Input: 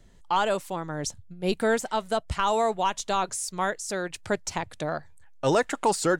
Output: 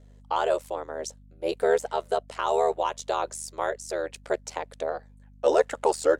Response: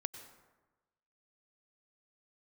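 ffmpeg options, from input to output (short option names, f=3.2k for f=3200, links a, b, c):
-af "highpass=f=490:t=q:w=3.6,aeval=exprs='val(0)*sin(2*PI*39*n/s)':c=same,aeval=exprs='val(0)+0.00398*(sin(2*PI*50*n/s)+sin(2*PI*2*50*n/s)/2+sin(2*PI*3*50*n/s)/3+sin(2*PI*4*50*n/s)/4+sin(2*PI*5*50*n/s)/5)':c=same,volume=-2.5dB"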